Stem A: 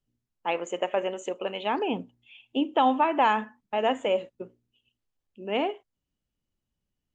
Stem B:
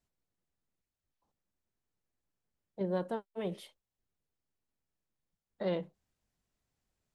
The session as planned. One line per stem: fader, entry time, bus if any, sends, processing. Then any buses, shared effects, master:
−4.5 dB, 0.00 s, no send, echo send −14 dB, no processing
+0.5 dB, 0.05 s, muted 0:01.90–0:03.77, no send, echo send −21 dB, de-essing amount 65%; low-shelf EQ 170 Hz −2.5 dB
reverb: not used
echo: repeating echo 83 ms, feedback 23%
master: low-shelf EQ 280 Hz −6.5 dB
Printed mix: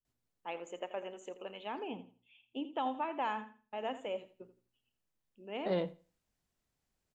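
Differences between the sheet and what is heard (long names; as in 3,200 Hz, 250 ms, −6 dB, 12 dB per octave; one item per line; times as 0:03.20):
stem A −4.5 dB → −13.5 dB
master: missing low-shelf EQ 280 Hz −6.5 dB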